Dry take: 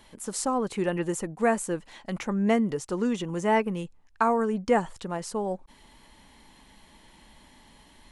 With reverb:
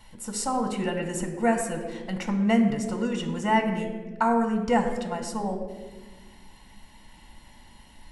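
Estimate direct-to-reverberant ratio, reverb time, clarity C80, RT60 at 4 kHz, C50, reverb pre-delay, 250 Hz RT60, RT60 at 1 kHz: 4.5 dB, 1.3 s, 9.0 dB, 0.90 s, 7.5 dB, 3 ms, 2.4 s, 1.1 s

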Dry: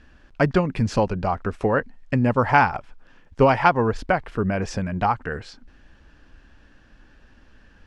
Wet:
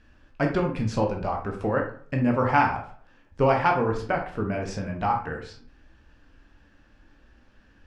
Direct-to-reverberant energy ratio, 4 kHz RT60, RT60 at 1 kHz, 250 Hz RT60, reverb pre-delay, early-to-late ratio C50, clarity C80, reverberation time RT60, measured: 1.0 dB, 0.30 s, 0.50 s, 0.55 s, 13 ms, 7.0 dB, 12.0 dB, 0.50 s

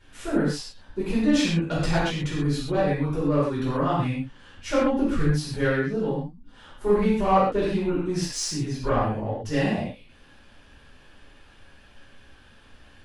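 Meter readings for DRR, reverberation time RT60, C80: −9.5 dB, non-exponential decay, 3.0 dB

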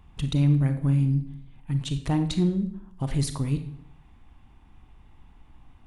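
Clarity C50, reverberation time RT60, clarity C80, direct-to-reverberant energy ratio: 10.5 dB, 0.65 s, 13.5 dB, 8.5 dB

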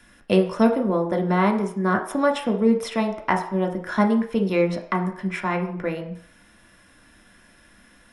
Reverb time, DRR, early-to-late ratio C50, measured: 0.60 s, 2.5 dB, 10.0 dB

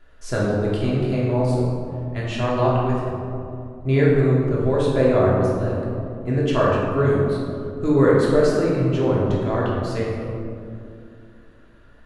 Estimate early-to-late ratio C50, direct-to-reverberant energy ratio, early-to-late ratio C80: −1.0 dB, −6.0 dB, 1.0 dB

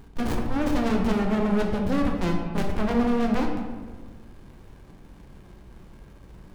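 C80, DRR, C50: 5.5 dB, 1.0 dB, 4.0 dB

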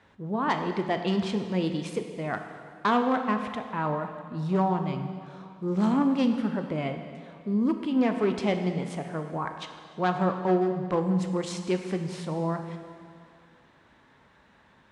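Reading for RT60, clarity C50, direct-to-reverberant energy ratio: 2.2 s, 7.0 dB, 6.0 dB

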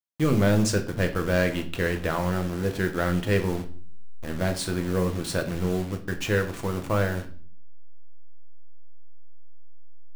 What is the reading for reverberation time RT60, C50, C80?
0.45 s, 13.0 dB, 17.0 dB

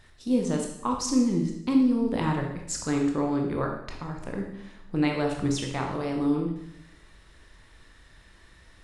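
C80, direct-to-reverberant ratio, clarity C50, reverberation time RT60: 7.5 dB, 1.0 dB, 4.5 dB, 0.80 s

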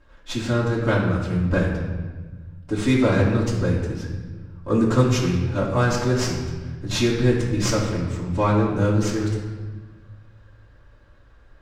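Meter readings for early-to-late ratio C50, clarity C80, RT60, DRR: 3.0 dB, 5.0 dB, 1.4 s, −8.0 dB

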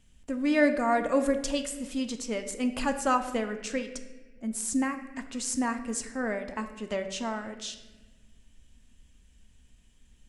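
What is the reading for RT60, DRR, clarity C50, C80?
1.3 s, 6.0 dB, 10.0 dB, 11.5 dB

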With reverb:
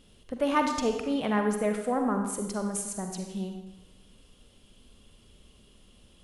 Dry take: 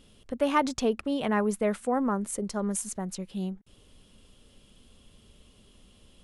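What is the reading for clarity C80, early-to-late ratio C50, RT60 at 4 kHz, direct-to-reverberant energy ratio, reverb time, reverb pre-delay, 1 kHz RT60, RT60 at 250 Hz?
7.0 dB, 5.0 dB, 0.90 s, 4.0 dB, 0.95 s, 40 ms, 0.95 s, 1.0 s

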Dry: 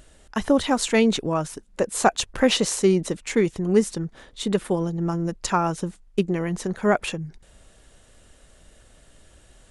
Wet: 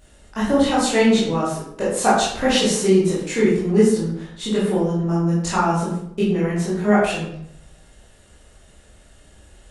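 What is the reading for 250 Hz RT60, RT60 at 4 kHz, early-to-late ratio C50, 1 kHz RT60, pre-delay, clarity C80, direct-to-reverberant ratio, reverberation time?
0.85 s, 0.50 s, 1.0 dB, 0.70 s, 15 ms, 5.0 dB, −9.0 dB, 0.70 s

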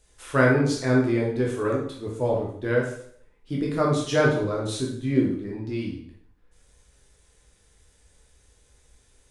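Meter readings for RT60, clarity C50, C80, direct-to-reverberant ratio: 0.60 s, 3.5 dB, 8.0 dB, −3.0 dB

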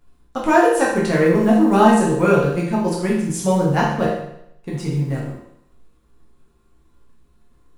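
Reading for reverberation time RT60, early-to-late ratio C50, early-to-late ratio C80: 0.75 s, 2.5 dB, 5.5 dB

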